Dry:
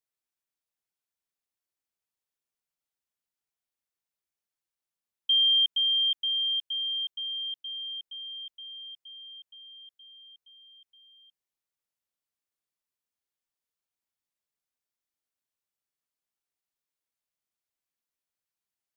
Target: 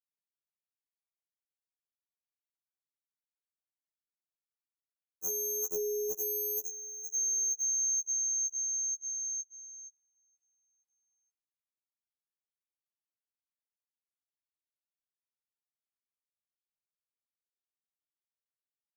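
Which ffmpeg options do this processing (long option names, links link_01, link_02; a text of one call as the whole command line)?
ffmpeg -i in.wav -filter_complex "[0:a]aeval=exprs='0.119*(cos(1*acos(clip(val(0)/0.119,-1,1)))-cos(1*PI/2))+0.0473*(cos(7*acos(clip(val(0)/0.119,-1,1)))-cos(7*PI/2))':channel_layout=same,asetrate=88200,aresample=44100,atempo=0.5,agate=range=-34dB:threshold=-43dB:ratio=16:detection=peak,aeval=exprs='0.15*sin(PI/2*3.98*val(0)/0.15)':channel_layout=same,asuperstop=centerf=3000:order=12:qfactor=0.66,asplit=2[link_01][link_02];[link_02]adelay=278,lowpass=frequency=2000:poles=1,volume=-23.5dB,asplit=2[link_03][link_04];[link_04]adelay=278,lowpass=frequency=2000:poles=1,volume=0.47,asplit=2[link_05][link_06];[link_06]adelay=278,lowpass=frequency=2000:poles=1,volume=0.47[link_07];[link_03][link_05][link_07]amix=inputs=3:normalize=0[link_08];[link_01][link_08]amix=inputs=2:normalize=0,afftfilt=real='re*2*eq(mod(b,4),0)':imag='im*2*eq(mod(b,4),0)':win_size=2048:overlap=0.75,volume=-6.5dB" out.wav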